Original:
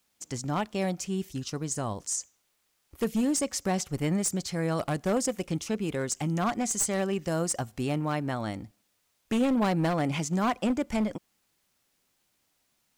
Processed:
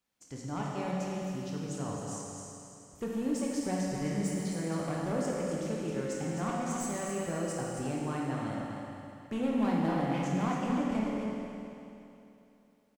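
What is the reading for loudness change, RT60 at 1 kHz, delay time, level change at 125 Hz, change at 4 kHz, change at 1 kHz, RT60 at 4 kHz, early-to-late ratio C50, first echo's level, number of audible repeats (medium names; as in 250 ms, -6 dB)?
-4.5 dB, 2.9 s, 266 ms, -4.0 dB, -8.0 dB, -4.0 dB, 2.9 s, -3.0 dB, -6.5 dB, 1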